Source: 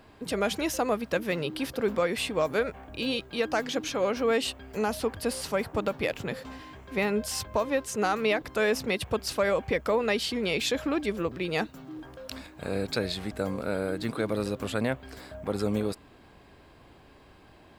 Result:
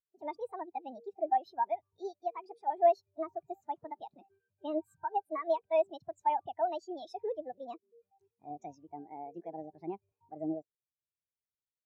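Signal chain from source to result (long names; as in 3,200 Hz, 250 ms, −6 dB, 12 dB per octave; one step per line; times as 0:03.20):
change of speed 1.5×
every bin expanded away from the loudest bin 2.5 to 1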